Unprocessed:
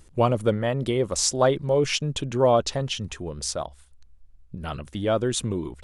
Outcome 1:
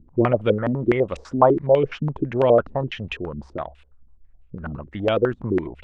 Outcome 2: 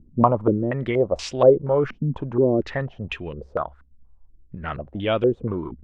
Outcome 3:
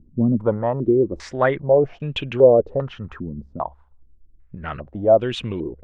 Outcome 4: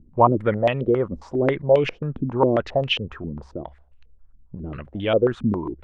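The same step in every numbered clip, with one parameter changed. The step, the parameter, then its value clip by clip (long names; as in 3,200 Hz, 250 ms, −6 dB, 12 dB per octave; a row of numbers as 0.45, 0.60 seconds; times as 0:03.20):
low-pass on a step sequencer, speed: 12, 4.2, 2.5, 7.4 Hertz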